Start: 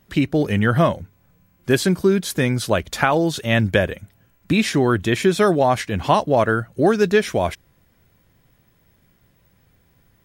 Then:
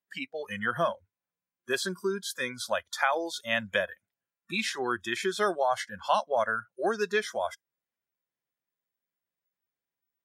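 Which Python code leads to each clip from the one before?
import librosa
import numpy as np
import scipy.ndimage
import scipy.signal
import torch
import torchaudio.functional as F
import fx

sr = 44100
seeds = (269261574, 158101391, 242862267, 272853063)

y = fx.weighting(x, sr, curve='A')
y = fx.noise_reduce_blind(y, sr, reduce_db=22)
y = y * librosa.db_to_amplitude(-7.5)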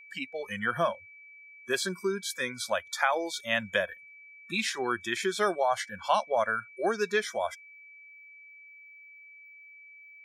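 y = fx.peak_eq(x, sr, hz=7200.0, db=2.5, octaves=0.64)
y = y + 10.0 ** (-49.0 / 20.0) * np.sin(2.0 * np.pi * 2300.0 * np.arange(len(y)) / sr)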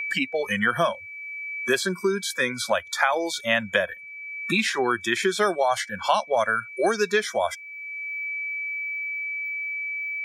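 y = fx.band_squash(x, sr, depth_pct=70)
y = y * librosa.db_to_amplitude(6.0)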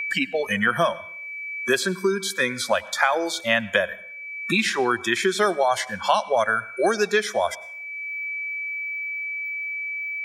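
y = fx.rev_plate(x, sr, seeds[0], rt60_s=0.61, hf_ratio=0.8, predelay_ms=85, drr_db=20.0)
y = y * librosa.db_to_amplitude(1.5)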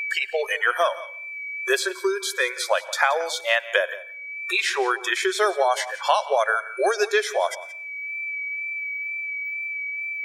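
y = fx.wow_flutter(x, sr, seeds[1], rate_hz=2.1, depth_cents=18.0)
y = fx.brickwall_highpass(y, sr, low_hz=360.0)
y = y + 10.0 ** (-17.5 / 20.0) * np.pad(y, (int(175 * sr / 1000.0), 0))[:len(y)]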